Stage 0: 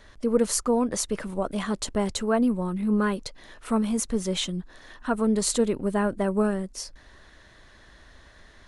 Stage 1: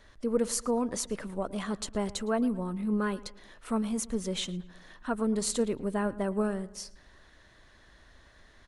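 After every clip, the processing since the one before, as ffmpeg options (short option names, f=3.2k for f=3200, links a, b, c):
-filter_complex "[0:a]asplit=2[a][b];[b]adelay=112,lowpass=f=3k:p=1,volume=-18.5dB,asplit=2[c][d];[d]adelay=112,lowpass=f=3k:p=1,volume=0.47,asplit=2[e][f];[f]adelay=112,lowpass=f=3k:p=1,volume=0.47,asplit=2[g][h];[h]adelay=112,lowpass=f=3k:p=1,volume=0.47[i];[a][c][e][g][i]amix=inputs=5:normalize=0,volume=-5.5dB"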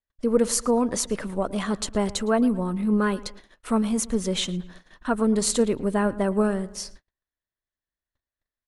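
-af "agate=range=-45dB:threshold=-49dB:ratio=16:detection=peak,volume=7dB"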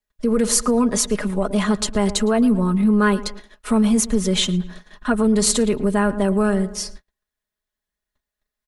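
-filter_complex "[0:a]aecho=1:1:4.8:0.67,acrossover=split=120|1300|2100[a][b][c][d];[b]alimiter=limit=-16.5dB:level=0:latency=1[e];[a][e][c][d]amix=inputs=4:normalize=0,volume=5dB"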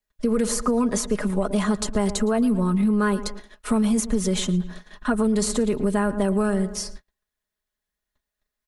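-filter_complex "[0:a]acrossover=split=1900|4600[a][b][c];[a]acompressor=threshold=-18dB:ratio=4[d];[b]acompressor=threshold=-44dB:ratio=4[e];[c]acompressor=threshold=-28dB:ratio=4[f];[d][e][f]amix=inputs=3:normalize=0"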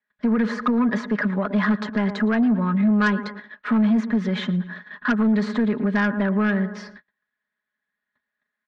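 -af "highpass=220,equalizer=f=220:t=q:w=4:g=5,equalizer=f=350:t=q:w=4:g=-9,equalizer=f=500:t=q:w=4:g=-6,equalizer=f=720:t=q:w=4:g=-6,equalizer=f=1.7k:t=q:w=4:g=10,equalizer=f=2.8k:t=q:w=4:g=-7,lowpass=f=3.2k:w=0.5412,lowpass=f=3.2k:w=1.3066,aeval=exprs='0.335*(cos(1*acos(clip(val(0)/0.335,-1,1)))-cos(1*PI/2))+0.0422*(cos(5*acos(clip(val(0)/0.335,-1,1)))-cos(5*PI/2))':c=same"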